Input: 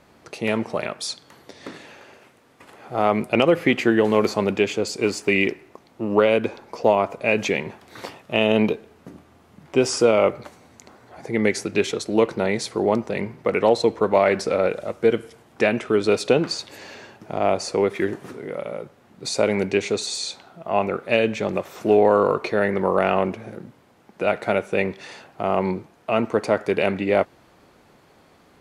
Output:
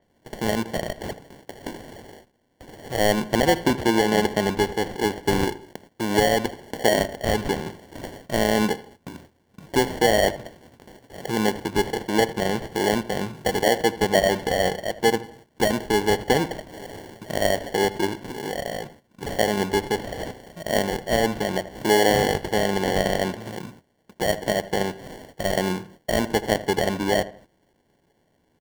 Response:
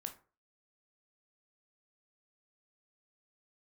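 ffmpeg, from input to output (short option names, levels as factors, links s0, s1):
-filter_complex "[0:a]highshelf=f=3000:g=-7,asplit=2[s0][s1];[s1]acompressor=threshold=0.0251:ratio=6,volume=1.41[s2];[s0][s2]amix=inputs=2:normalize=0,acrusher=samples=35:mix=1:aa=0.000001,asplit=2[s3][s4];[s4]adelay=80,lowpass=f=2400:p=1,volume=0.158,asplit=2[s5][s6];[s6]adelay=80,lowpass=f=2400:p=1,volume=0.34,asplit=2[s7][s8];[s8]adelay=80,lowpass=f=2400:p=1,volume=0.34[s9];[s5][s7][s9]amix=inputs=3:normalize=0[s10];[s3][s10]amix=inputs=2:normalize=0,agate=range=0.178:threshold=0.00794:ratio=16:detection=peak,adynamicequalizer=threshold=0.0112:dfrequency=6000:dqfactor=0.7:tfrequency=6000:tqfactor=0.7:attack=5:release=100:ratio=0.375:range=2.5:mode=cutabove:tftype=highshelf,volume=0.668"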